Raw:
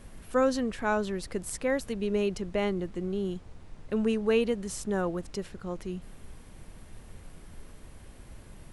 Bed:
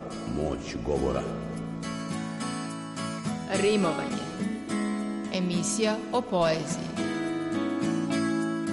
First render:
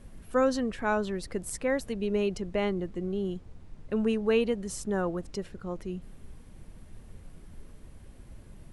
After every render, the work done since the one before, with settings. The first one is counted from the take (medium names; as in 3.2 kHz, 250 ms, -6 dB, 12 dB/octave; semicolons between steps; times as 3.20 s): noise reduction 6 dB, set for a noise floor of -50 dBFS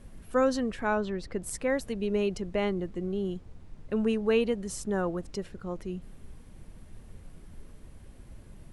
0.87–1.43 s: distance through air 86 m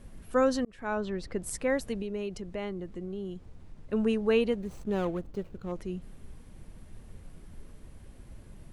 0.65–1.29 s: fade in equal-power; 2.02–3.93 s: compression 1.5:1, threshold -43 dBFS; 4.53–5.72 s: median filter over 25 samples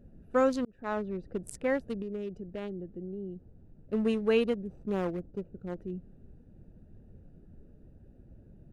local Wiener filter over 41 samples; bass shelf 61 Hz -10.5 dB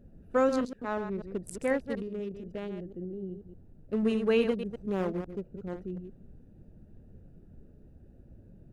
chunks repeated in reverse 122 ms, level -8 dB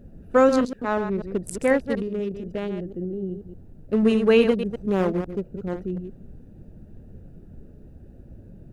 trim +8.5 dB